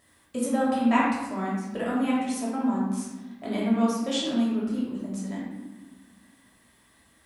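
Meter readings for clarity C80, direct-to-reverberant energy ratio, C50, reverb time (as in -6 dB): 2.5 dB, -6.5 dB, -0.5 dB, 1.3 s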